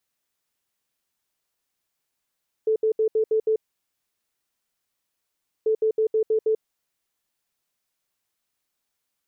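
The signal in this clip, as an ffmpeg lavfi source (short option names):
-f lavfi -i "aevalsrc='0.133*sin(2*PI*438*t)*clip(min(mod(mod(t,2.99),0.16),0.09-mod(mod(t,2.99),0.16))/0.005,0,1)*lt(mod(t,2.99),0.96)':d=5.98:s=44100"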